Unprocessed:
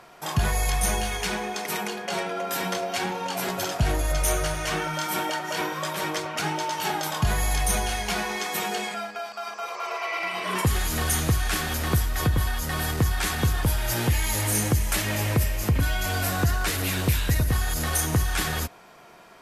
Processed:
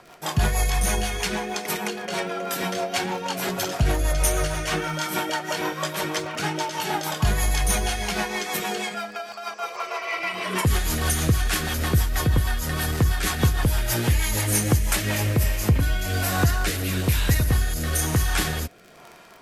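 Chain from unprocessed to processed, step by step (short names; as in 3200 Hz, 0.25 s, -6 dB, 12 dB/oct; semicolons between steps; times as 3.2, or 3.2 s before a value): crackle 28/s -35 dBFS; rotary speaker horn 6.3 Hz, later 1.1 Hz, at 14.63; gain +4 dB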